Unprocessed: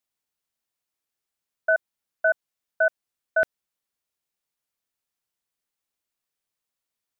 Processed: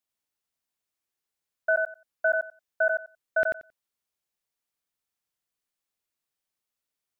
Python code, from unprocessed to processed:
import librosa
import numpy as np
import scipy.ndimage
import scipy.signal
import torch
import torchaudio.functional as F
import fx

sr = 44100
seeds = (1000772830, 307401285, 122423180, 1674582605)

y = fx.echo_feedback(x, sr, ms=90, feedback_pct=15, wet_db=-4)
y = y * librosa.db_to_amplitude(-3.0)